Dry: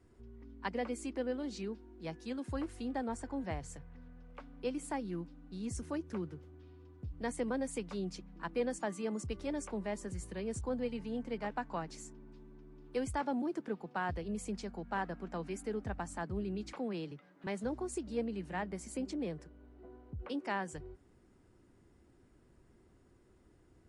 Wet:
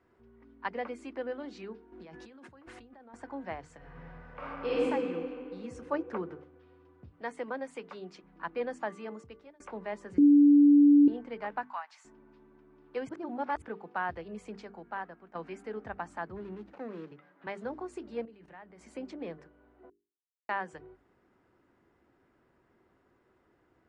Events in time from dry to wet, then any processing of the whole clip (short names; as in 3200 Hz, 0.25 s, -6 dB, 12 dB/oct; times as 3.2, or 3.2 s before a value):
1.92–3.14 negative-ratio compressor -49 dBFS
3.77–4.82 reverb throw, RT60 2.7 s, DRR -11.5 dB
5.91–6.44 bell 680 Hz +8.5 dB 2.8 oct
7.09–8.24 HPF 280 Hz 6 dB/oct
8.94–9.6 fade out
10.18–11.08 bleep 289 Hz -13 dBFS
11.63–12.05 steep high-pass 770 Hz
13.09–13.62 reverse
14.48–15.35 fade out, to -12 dB
16.36–17.12 median filter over 41 samples
18.25–18.81 level quantiser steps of 17 dB
19.9–20.49 mute
whole clip: LPF 1500 Hz 12 dB/oct; tilt +4 dB/oct; notches 50/100/150/200/250/300/350/400/450 Hz; gain +5 dB